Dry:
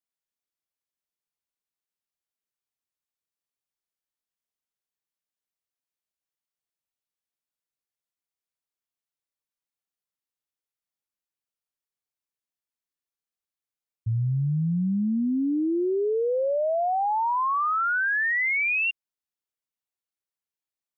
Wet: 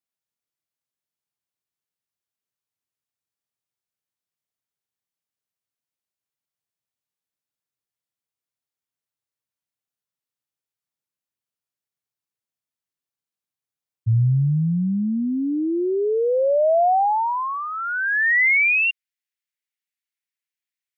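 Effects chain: high-pass sweep 110 Hz -> 2000 Hz, 15.37–17.7

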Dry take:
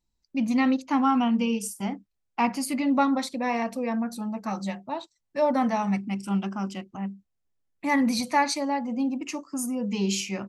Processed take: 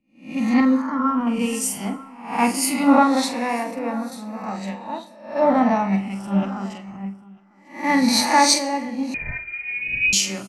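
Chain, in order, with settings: spectral swells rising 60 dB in 0.80 s; in parallel at -10 dB: soft clip -21.5 dBFS, distortion -12 dB; 0.6–1.27 on the sum: fixed phaser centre 520 Hz, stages 8; doubler 46 ms -8 dB; echo 0.947 s -13.5 dB; on a send at -16.5 dB: reverb RT60 1.5 s, pre-delay 76 ms; 9.14–10.13 on the sum: inverted band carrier 2700 Hz; three-band expander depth 100%

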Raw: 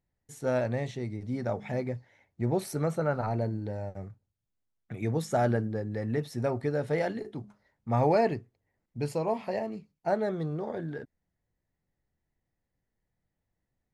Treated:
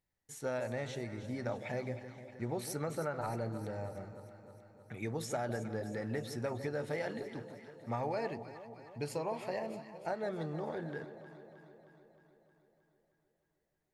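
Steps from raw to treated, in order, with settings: low shelf 480 Hz -8.5 dB; notch 690 Hz, Q 22; compressor, threshold -33 dBFS, peak gain reduction 9.5 dB; on a send: echo with dull and thin repeats by turns 0.156 s, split 800 Hz, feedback 78%, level -10 dB

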